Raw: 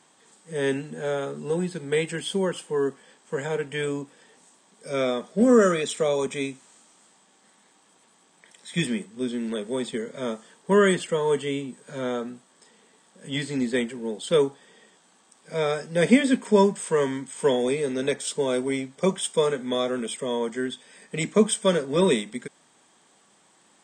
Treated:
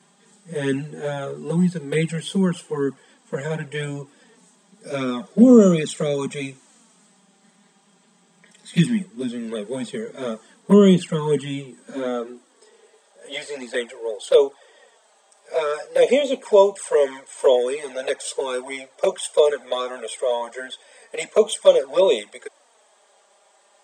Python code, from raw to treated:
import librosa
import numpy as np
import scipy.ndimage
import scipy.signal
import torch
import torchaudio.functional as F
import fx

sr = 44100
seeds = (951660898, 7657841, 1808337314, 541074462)

y = fx.env_flanger(x, sr, rest_ms=5.1, full_db=-17.0)
y = fx.filter_sweep_highpass(y, sr, from_hz=170.0, to_hz=570.0, start_s=11.53, end_s=13.17, q=2.9)
y = y * 10.0 ** (3.5 / 20.0)